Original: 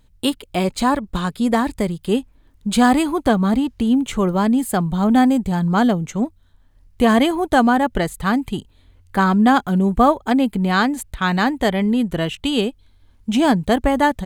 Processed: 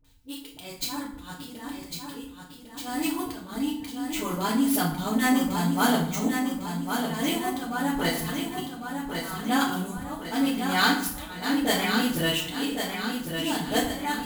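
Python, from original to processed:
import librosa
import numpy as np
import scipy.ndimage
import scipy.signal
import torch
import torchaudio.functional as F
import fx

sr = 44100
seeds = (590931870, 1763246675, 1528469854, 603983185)

p1 = scipy.signal.medfilt(x, 5)
p2 = fx.rider(p1, sr, range_db=10, speed_s=2.0)
p3 = fx.auto_swell(p2, sr, attack_ms=525.0)
p4 = F.preemphasis(torch.from_numpy(p3), 0.9).numpy()
p5 = fx.dispersion(p4, sr, late='highs', ms=46.0, hz=590.0)
p6 = p5 + fx.echo_feedback(p5, sr, ms=1102, feedback_pct=50, wet_db=-6, dry=0)
p7 = fx.rev_fdn(p6, sr, rt60_s=0.59, lf_ratio=1.45, hf_ratio=0.75, size_ms=20.0, drr_db=-5.0)
y = p7 * librosa.db_to_amplitude(3.5)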